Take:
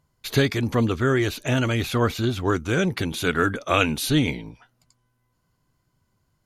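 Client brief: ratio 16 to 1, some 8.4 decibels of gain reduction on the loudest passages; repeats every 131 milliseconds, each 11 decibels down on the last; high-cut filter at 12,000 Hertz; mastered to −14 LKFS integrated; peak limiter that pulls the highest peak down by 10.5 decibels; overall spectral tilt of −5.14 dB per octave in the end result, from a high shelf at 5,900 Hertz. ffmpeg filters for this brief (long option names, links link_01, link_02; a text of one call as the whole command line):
ffmpeg -i in.wav -af "lowpass=12000,highshelf=frequency=5900:gain=-6.5,acompressor=threshold=-23dB:ratio=16,alimiter=limit=-23.5dB:level=0:latency=1,aecho=1:1:131|262|393:0.282|0.0789|0.0221,volume=18.5dB" out.wav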